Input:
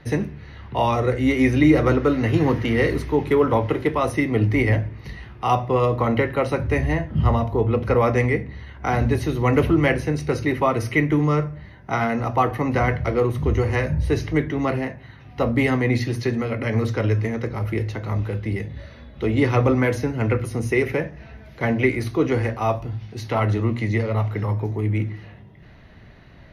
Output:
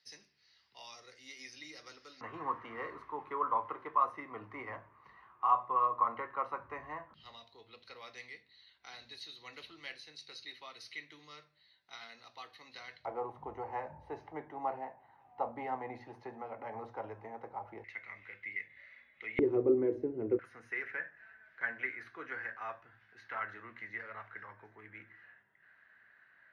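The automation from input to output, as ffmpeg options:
-af "asetnsamples=n=441:p=0,asendcmd='2.21 bandpass f 1100;7.14 bandpass f 4100;13.05 bandpass f 840;17.84 bandpass f 2100;19.39 bandpass f 370;20.39 bandpass f 1600',bandpass=f=5k:t=q:w=7.9:csg=0"

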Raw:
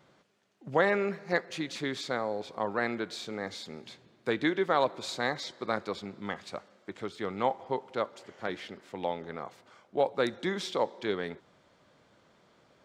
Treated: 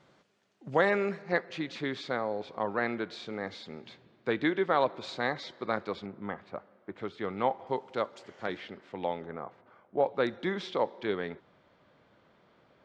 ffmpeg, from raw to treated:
-af "asetnsamples=n=441:p=0,asendcmd='1.22 lowpass f 3700;6.06 lowpass f 1600;6.97 lowpass f 3300;7.67 lowpass f 7100;8.57 lowpass f 3600;9.26 lowpass f 1600;10.04 lowpass f 3400',lowpass=8.6k"

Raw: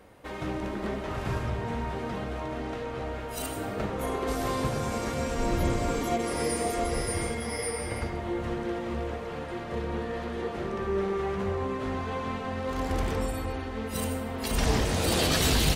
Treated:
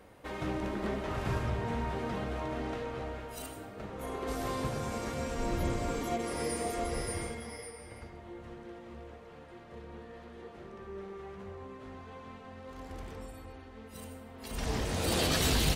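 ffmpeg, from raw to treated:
-af "volume=17dB,afade=t=out:st=2.69:d=1.03:silence=0.266073,afade=t=in:st=3.72:d=0.63:silence=0.398107,afade=t=out:st=7.07:d=0.66:silence=0.334965,afade=t=in:st=14.35:d=0.81:silence=0.281838"

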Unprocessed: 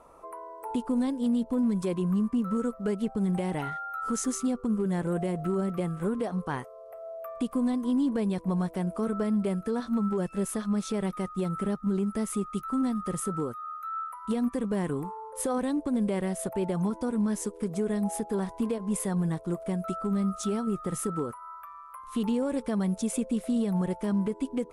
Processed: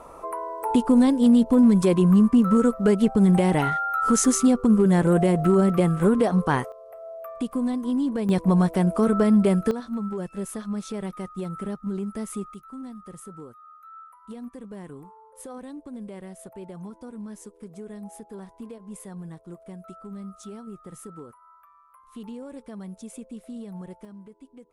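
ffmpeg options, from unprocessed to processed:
-af "asetnsamples=n=441:p=0,asendcmd='6.72 volume volume 1.5dB;8.29 volume volume 9dB;9.71 volume volume -2dB;12.54 volume volume -10.5dB;24.05 volume volume -17.5dB',volume=10dB"

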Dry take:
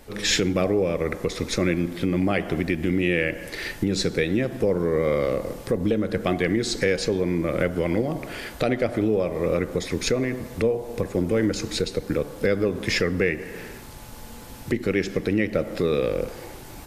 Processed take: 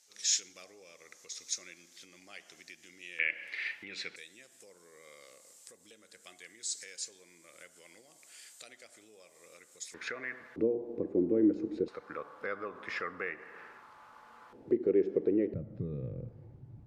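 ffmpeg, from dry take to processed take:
-af "asetnsamples=n=441:p=0,asendcmd='3.19 bandpass f 2300;4.16 bandpass f 7600;9.94 bandpass f 1600;10.56 bandpass f 330;11.88 bandpass f 1200;14.53 bandpass f 390;15.54 bandpass f 120',bandpass=f=6.4k:t=q:w=3.5:csg=0"

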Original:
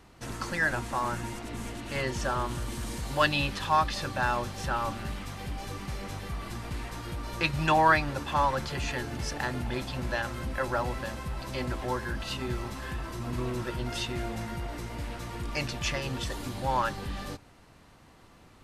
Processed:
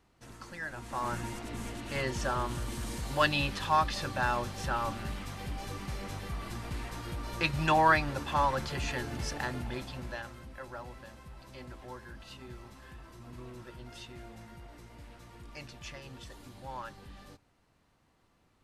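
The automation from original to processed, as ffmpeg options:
-af "volume=-2dB,afade=t=in:st=0.74:d=0.4:silence=0.298538,afade=t=out:st=9.24:d=1.22:silence=0.251189"

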